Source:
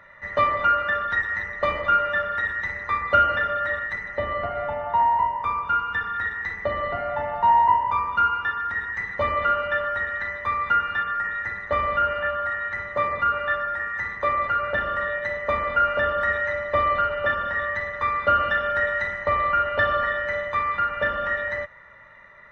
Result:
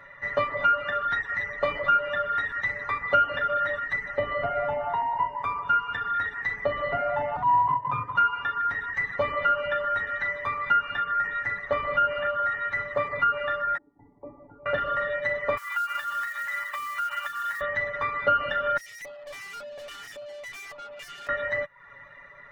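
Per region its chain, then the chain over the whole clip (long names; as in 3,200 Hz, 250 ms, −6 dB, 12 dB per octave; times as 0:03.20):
0:07.36–0:08.16: spectral tilt −2 dB per octave + transient designer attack −12 dB, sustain −7 dB + frequency shifter +39 Hz
0:13.77–0:14.66: variable-slope delta modulation 64 kbit/s + formant resonators in series u + high-shelf EQ 2,700 Hz −6.5 dB
0:15.57–0:17.61: Butterworth high-pass 950 Hz + downward compressor 16 to 1, threshold −27 dBFS + floating-point word with a short mantissa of 2 bits
0:18.77–0:21.29: high shelf with overshoot 2,200 Hz +9.5 dB, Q 1.5 + auto-filter band-pass square 1.8 Hz 610–2,200 Hz + tube saturation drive 41 dB, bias 0.5
whole clip: reverb reduction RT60 0.53 s; downward compressor 2 to 1, threshold −27 dBFS; comb filter 7.1 ms, depth 69%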